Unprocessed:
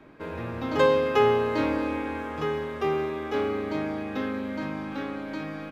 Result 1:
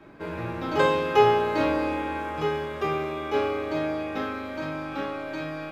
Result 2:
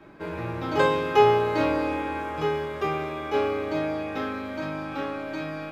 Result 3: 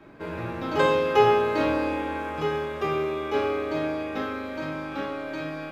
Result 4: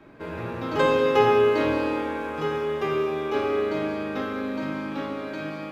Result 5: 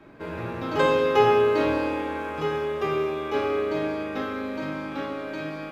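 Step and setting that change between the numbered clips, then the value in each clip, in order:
reverb whose tail is shaped and stops, gate: 120, 80, 180, 490, 290 milliseconds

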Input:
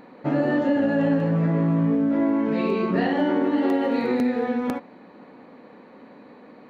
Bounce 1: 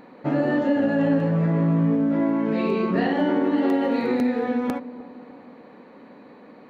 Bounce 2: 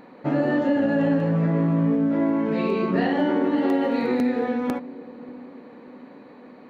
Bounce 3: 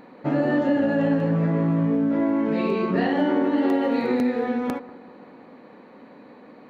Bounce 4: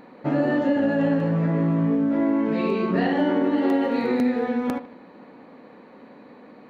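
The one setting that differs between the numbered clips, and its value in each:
bucket-brigade delay, delay time: 303, 589, 191, 76 milliseconds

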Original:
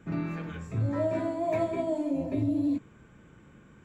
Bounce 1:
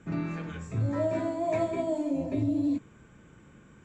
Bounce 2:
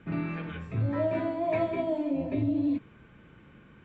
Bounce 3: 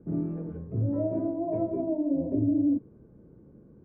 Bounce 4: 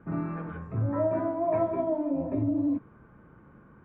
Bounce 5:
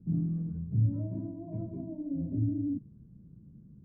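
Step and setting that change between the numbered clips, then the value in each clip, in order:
low-pass with resonance, frequency: 7,800, 3,000, 450, 1,200, 180 Hertz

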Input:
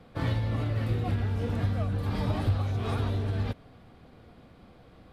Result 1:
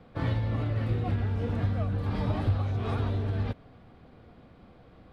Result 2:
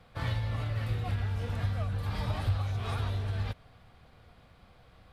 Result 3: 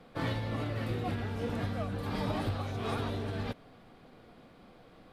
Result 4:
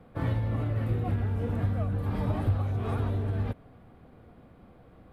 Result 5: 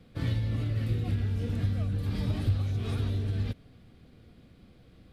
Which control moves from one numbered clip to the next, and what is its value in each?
parametric band, centre frequency: 14,000, 290, 69, 4,900, 890 Hertz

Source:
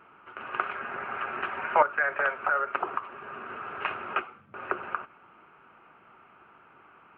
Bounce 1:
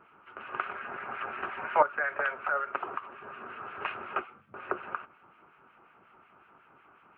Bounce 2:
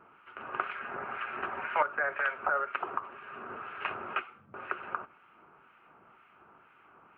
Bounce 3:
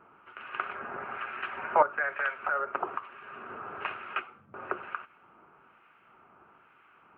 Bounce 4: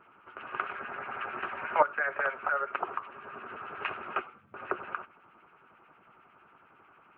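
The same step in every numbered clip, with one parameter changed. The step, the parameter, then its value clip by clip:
two-band tremolo in antiphase, speed: 5.5, 2, 1.1, 11 Hertz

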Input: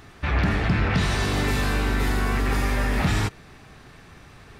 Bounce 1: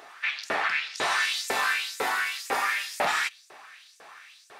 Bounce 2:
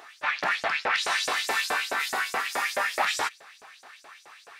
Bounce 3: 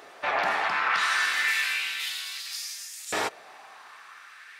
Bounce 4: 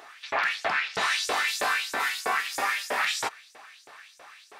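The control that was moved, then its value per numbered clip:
auto-filter high-pass, speed: 2, 4.7, 0.32, 3.1 Hertz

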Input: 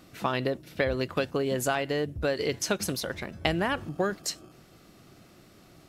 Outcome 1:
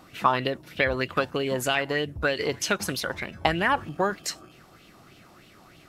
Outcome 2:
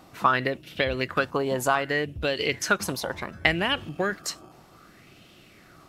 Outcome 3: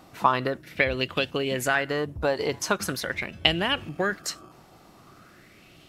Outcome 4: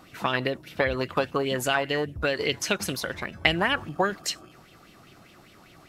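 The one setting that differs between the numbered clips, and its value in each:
auto-filter bell, speed: 3.2, 0.66, 0.42, 5 Hertz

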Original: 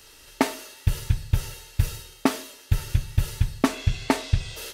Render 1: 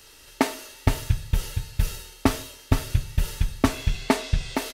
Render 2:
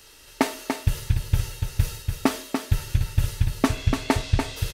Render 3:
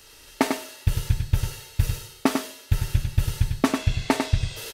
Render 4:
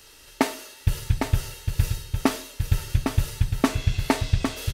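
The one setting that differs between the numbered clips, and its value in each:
single-tap delay, delay time: 466, 290, 98, 806 milliseconds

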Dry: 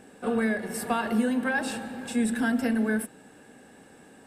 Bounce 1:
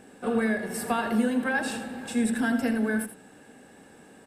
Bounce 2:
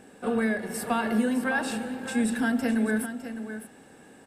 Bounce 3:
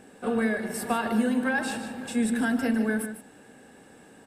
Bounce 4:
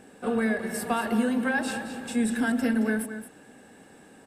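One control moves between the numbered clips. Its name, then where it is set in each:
single-tap delay, delay time: 82, 608, 150, 222 milliseconds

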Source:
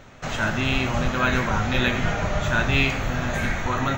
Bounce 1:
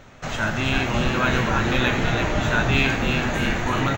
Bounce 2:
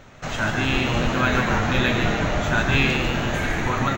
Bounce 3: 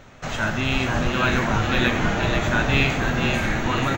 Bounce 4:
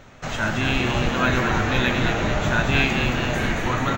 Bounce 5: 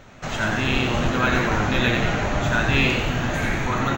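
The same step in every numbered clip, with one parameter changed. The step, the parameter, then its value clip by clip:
echo with shifted repeats, delay time: 330, 148, 485, 221, 90 milliseconds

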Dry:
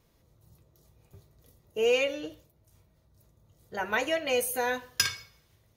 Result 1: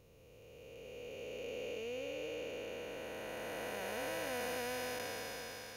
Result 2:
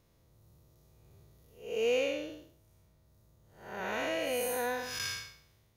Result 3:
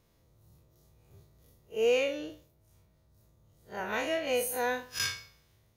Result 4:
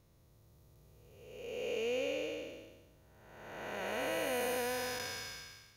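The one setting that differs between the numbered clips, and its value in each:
spectrum smeared in time, width: 1,710, 244, 85, 687 milliseconds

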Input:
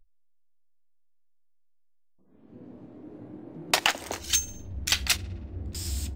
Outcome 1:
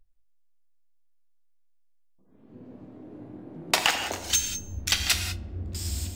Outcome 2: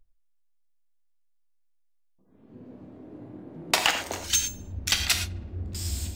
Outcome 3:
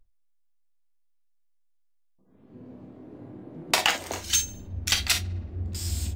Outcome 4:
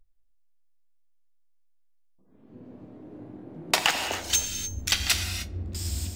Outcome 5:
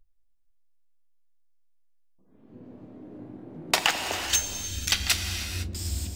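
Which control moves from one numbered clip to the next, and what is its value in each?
reverb whose tail is shaped and stops, gate: 220, 140, 80, 330, 530 milliseconds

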